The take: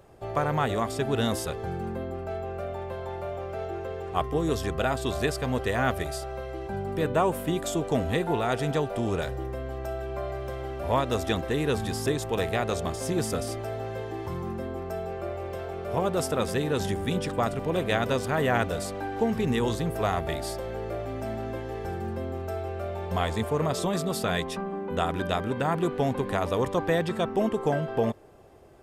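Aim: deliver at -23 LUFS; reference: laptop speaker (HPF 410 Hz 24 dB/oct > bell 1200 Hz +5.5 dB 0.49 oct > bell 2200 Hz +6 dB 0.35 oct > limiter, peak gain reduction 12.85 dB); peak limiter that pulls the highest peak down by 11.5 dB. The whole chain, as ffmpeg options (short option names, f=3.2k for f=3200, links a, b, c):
-af "alimiter=limit=-21.5dB:level=0:latency=1,highpass=f=410:w=0.5412,highpass=f=410:w=1.3066,equalizer=f=1.2k:t=o:w=0.49:g=5.5,equalizer=f=2.2k:t=o:w=0.35:g=6,volume=15.5dB,alimiter=limit=-14.5dB:level=0:latency=1"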